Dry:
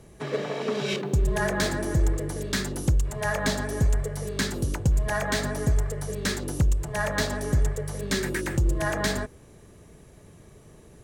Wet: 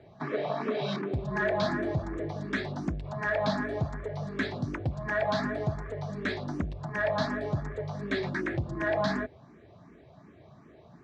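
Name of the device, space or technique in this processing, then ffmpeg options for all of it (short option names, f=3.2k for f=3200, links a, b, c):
barber-pole phaser into a guitar amplifier: -filter_complex "[0:a]asplit=2[a][b];[b]afreqshift=2.7[c];[a][c]amix=inputs=2:normalize=1,asoftclip=type=tanh:threshold=-20.5dB,highpass=110,equalizer=f=270:t=q:w=4:g=3,equalizer=f=470:t=q:w=4:g=-6,equalizer=f=680:t=q:w=4:g=7,equalizer=f=1.1k:t=q:w=4:g=3,equalizer=f=2.9k:t=q:w=4:g=-8,lowpass=f=4k:w=0.5412,lowpass=f=4k:w=1.3066,volume=1.5dB"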